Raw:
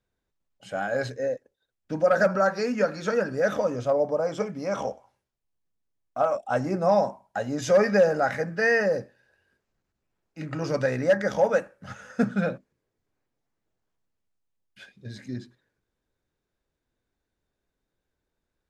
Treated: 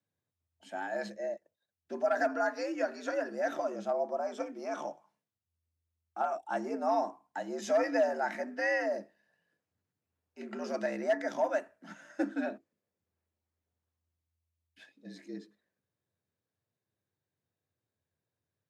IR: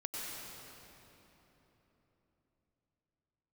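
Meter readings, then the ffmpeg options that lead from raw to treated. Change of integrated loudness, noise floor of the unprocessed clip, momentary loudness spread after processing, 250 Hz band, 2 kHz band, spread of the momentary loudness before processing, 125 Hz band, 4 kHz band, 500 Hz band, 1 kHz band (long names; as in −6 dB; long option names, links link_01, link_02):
−8.5 dB, −83 dBFS, 16 LU, −8.0 dB, −8.0 dB, 16 LU, below −20 dB, −8.5 dB, −9.0 dB, −5.5 dB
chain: -af "afreqshift=82,volume=-8.5dB"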